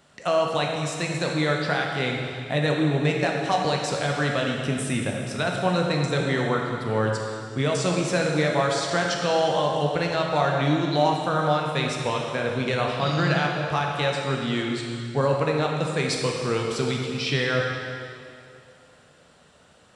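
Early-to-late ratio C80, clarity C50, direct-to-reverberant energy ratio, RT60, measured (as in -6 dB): 3.0 dB, 1.5 dB, -0.5 dB, 2.4 s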